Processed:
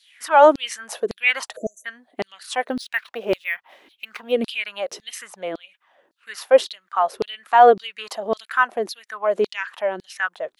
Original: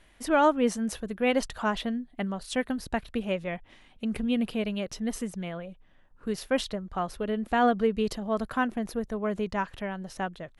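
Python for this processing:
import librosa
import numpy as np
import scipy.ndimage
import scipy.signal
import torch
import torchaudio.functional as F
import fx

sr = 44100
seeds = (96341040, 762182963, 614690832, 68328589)

y = fx.filter_lfo_highpass(x, sr, shape='saw_down', hz=1.8, low_hz=310.0, high_hz=4600.0, q=4.3)
y = fx.spec_erase(y, sr, start_s=1.56, length_s=0.29, low_hz=680.0, high_hz=5900.0)
y = fx.resample_linear(y, sr, factor=3, at=(2.66, 4.32))
y = y * librosa.db_to_amplitude(4.5)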